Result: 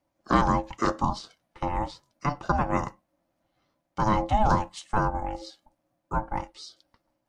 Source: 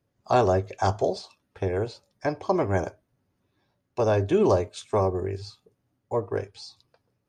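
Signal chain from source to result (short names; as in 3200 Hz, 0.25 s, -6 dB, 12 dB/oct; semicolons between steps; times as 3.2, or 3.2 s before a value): HPF 100 Hz; ring modulator 430 Hz; gain +2 dB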